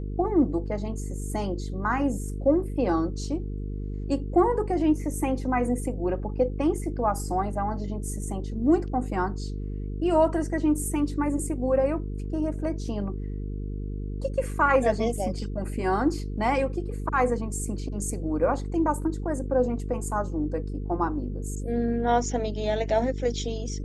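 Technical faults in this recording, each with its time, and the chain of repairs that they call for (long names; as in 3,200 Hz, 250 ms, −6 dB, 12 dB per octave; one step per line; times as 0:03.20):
mains buzz 50 Hz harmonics 9 −32 dBFS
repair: hum removal 50 Hz, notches 9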